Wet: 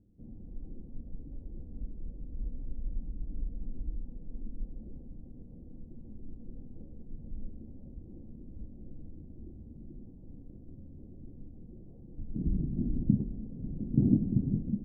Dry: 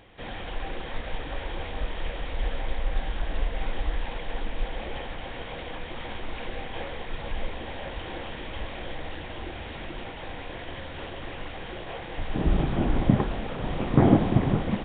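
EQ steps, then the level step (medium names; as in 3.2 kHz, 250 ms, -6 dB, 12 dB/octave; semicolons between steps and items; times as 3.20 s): four-pole ladder low-pass 290 Hz, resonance 40%; distance through air 390 m; 0.0 dB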